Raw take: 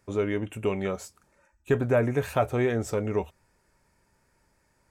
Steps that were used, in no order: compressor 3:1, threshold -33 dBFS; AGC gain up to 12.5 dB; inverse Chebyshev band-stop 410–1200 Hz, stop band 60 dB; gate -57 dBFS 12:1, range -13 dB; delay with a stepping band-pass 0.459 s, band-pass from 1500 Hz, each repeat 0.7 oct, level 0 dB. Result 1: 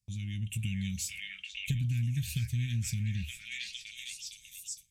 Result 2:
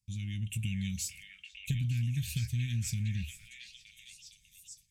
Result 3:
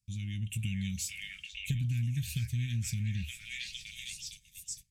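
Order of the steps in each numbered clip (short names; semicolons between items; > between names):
inverse Chebyshev band-stop > gate > delay with a stepping band-pass > AGC > compressor; gate > AGC > inverse Chebyshev band-stop > compressor > delay with a stepping band-pass; delay with a stepping band-pass > gate > AGC > inverse Chebyshev band-stop > compressor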